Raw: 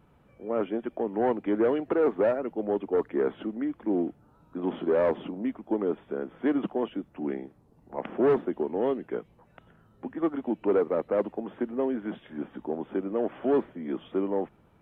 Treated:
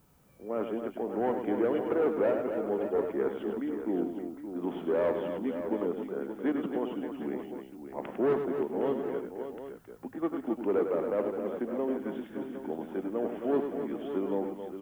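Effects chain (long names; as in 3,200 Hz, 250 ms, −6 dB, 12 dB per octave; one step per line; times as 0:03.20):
background noise blue −67 dBFS
multi-tap delay 101/269/573/760 ms −7.5/−8/−9.5/−12 dB
level −4.5 dB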